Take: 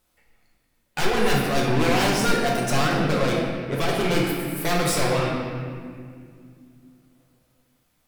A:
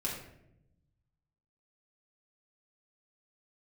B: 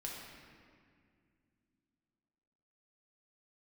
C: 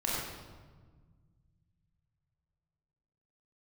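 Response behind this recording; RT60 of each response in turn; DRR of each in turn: B; 0.80, 2.2, 1.5 seconds; −4.5, −3.0, −6.5 decibels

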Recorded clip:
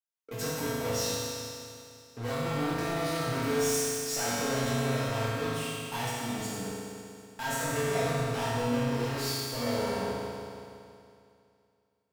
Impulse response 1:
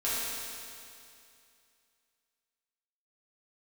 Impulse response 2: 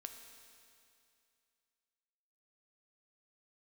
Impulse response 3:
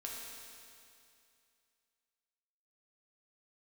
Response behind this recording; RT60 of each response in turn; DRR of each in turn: 1; 2.5, 2.5, 2.5 seconds; −10.5, 5.0, −3.5 decibels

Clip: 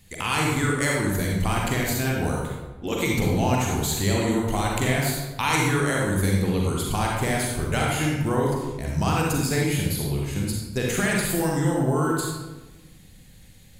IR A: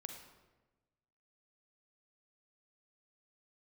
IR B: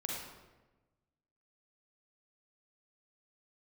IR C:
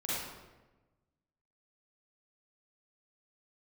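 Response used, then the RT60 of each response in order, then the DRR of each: B; 1.2, 1.2, 1.2 seconds; 4.0, −2.5, −9.5 decibels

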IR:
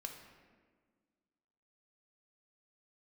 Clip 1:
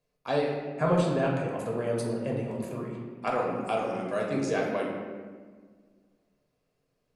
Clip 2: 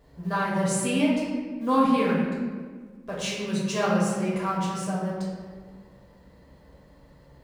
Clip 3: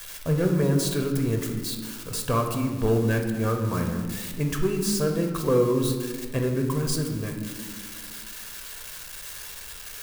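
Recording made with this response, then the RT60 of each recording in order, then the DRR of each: 3; 1.6, 1.6, 1.6 seconds; −2.5, −6.5, 3.0 decibels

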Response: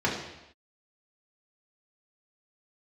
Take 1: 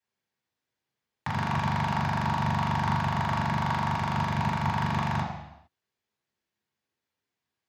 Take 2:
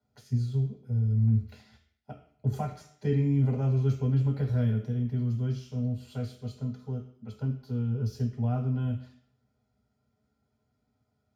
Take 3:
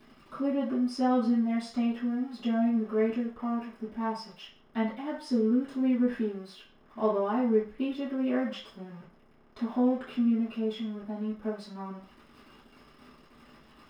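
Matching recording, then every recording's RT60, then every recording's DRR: 1; non-exponential decay, 0.60 s, 0.40 s; −5.0, −1.0, −12.5 decibels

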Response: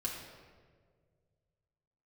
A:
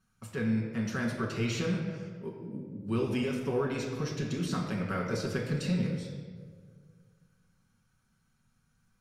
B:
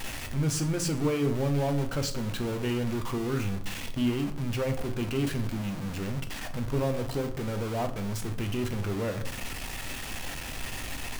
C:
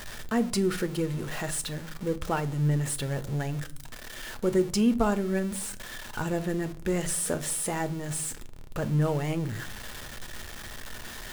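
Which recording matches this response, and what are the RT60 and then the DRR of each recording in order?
A; 1.8, 0.70, 0.50 seconds; −3.5, 5.5, 10.5 decibels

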